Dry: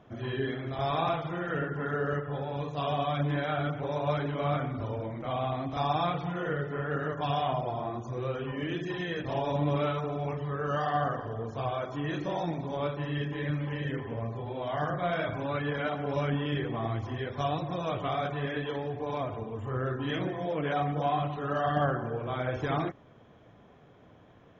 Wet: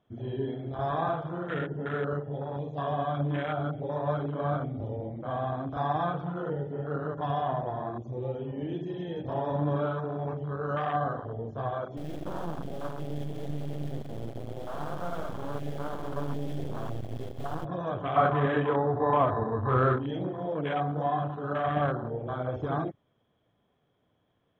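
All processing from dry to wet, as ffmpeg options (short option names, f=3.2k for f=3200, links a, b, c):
-filter_complex "[0:a]asettb=1/sr,asplit=3[a][b][c];[a]atrim=end=11.974[d];[b]atrim=start=11.97:end=17.65,asetpts=PTS-STARTPTS,afade=t=in:d=0.004:c=qsin,afade=t=out:st=5.676:d=0.004:c=qsin,aemphasis=mode=reproduction:type=75kf,acrusher=bits=3:dc=4:mix=0:aa=0.000001,aecho=1:1:131|262|393|524|655|786|917:0.355|0.199|0.111|0.0623|0.0349|0.0195|0.0109,atrim=end_sample=250488[e];[c]atrim=start=17.646[f];[d][e]acrossfade=d=0.004:c1=hsin:c2=qsin[g];[g][f]acrossfade=d=0.004:c1=qsin:c2=hsin,asettb=1/sr,asplit=3[h][i][j];[h]atrim=end=18.164[k];[i]atrim=start=18.16:end=19.99,asetpts=PTS-STARTPTS,afade=t=in:d=0.004:c=qsin,afade=t=out:st=1.826:d=0.004:c=qsin,lowpass=f=1.2k:t=q:w=2.3,acontrast=59[l];[j]atrim=start=19.986[m];[k][l]acrossfade=d=0.004:c1=hsin:c2=qsin[n];[n][m]acrossfade=d=0.004:c1=qsin:c2=hsin,afwtdn=0.0224,equalizer=f=3.3k:t=o:w=0.24:g=9"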